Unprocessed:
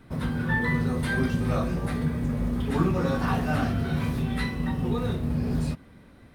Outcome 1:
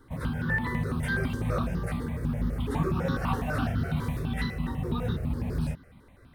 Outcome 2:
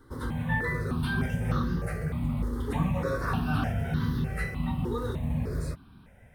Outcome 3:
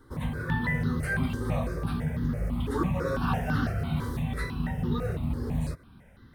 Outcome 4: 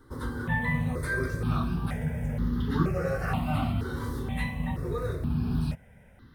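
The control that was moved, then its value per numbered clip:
step-sequenced phaser, speed: 12, 3.3, 6, 2.1 Hertz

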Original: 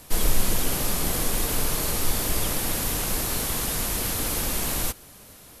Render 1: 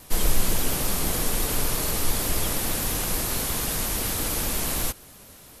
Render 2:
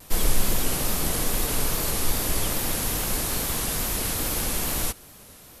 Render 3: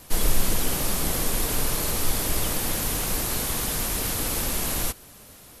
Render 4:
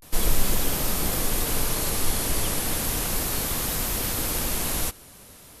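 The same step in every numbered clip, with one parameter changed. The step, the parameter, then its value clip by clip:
pitch vibrato, speed: 8.6, 2.4, 15, 0.33 Hertz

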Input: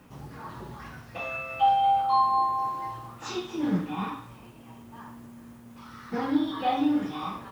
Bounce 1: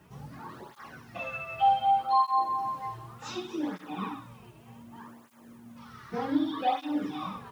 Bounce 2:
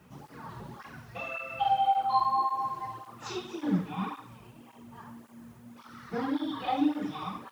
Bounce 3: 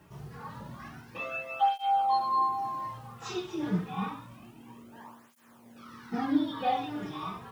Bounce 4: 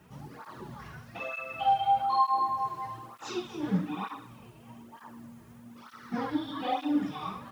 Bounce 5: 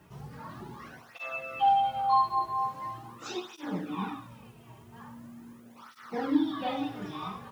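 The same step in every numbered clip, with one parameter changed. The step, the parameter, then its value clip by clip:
through-zero flanger with one copy inverted, nulls at: 0.66, 1.8, 0.28, 1.1, 0.42 Hertz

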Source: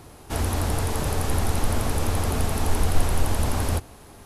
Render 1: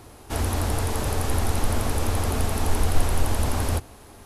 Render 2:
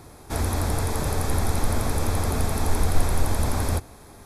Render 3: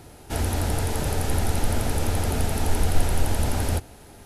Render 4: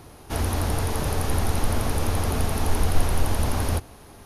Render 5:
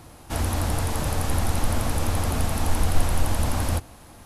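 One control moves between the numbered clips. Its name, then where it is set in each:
notch filter, centre frequency: 160, 2,900, 1,100, 7,700, 410 Hertz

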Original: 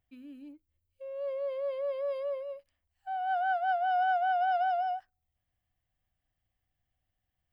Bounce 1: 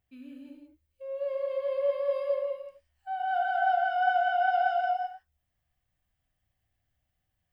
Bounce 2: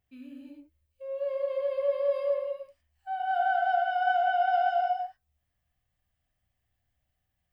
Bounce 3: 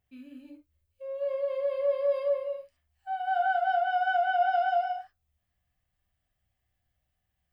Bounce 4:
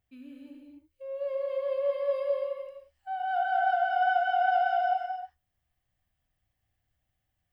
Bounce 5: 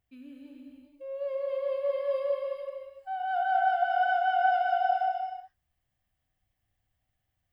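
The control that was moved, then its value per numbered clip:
reverb whose tail is shaped and stops, gate: 210, 140, 90, 320, 500 milliseconds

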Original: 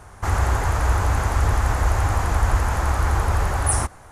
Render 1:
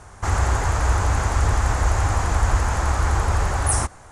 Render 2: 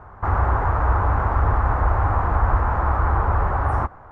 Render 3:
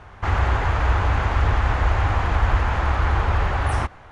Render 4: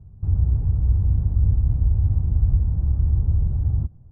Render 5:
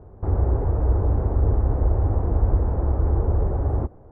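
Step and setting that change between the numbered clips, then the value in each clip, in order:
low-pass with resonance, frequency: 7,900, 1,200, 3,100, 150, 430 Hertz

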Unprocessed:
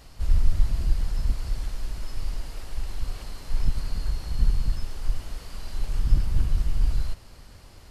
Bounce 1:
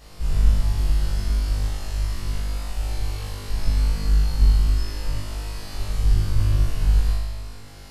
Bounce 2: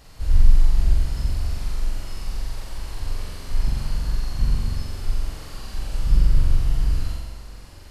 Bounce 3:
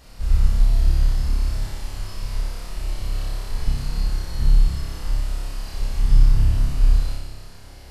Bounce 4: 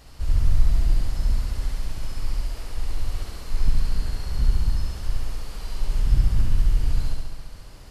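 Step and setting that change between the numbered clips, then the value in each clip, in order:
flutter between parallel walls, walls apart: 3.4, 7.6, 5.1, 11.7 metres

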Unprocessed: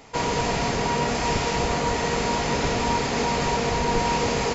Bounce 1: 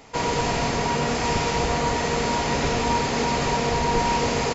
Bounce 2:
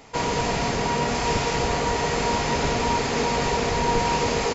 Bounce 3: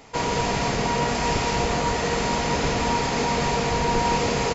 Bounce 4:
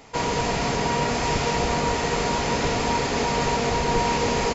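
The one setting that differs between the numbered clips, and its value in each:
single-tap delay, delay time: 94, 982, 169, 476 milliseconds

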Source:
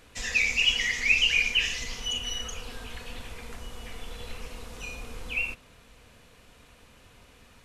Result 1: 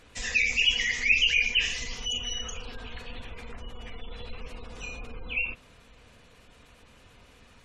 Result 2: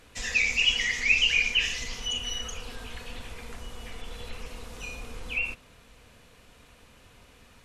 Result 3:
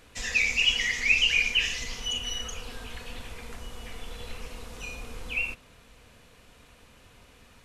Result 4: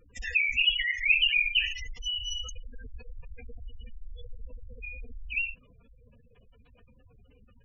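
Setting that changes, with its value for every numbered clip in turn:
gate on every frequency bin, under each frame's peak: −30, −45, −55, −10 decibels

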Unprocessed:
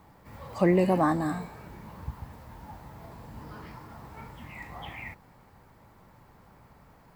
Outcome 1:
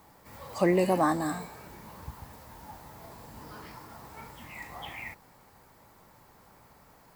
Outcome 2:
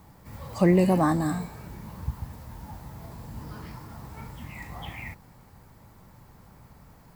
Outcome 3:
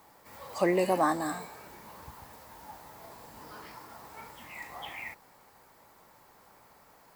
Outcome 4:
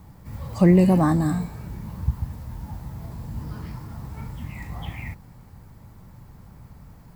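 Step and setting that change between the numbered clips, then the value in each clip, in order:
bass and treble, bass: −6, +6, −15, +14 decibels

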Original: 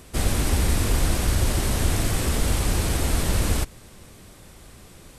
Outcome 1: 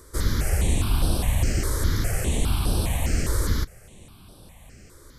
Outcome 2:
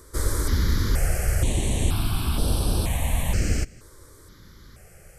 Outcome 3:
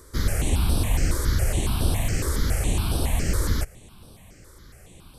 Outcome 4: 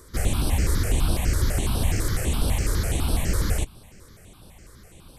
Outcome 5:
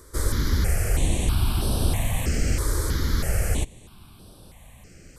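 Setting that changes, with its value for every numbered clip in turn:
step-sequenced phaser, speed: 4.9, 2.1, 7.2, 12, 3.1 Hertz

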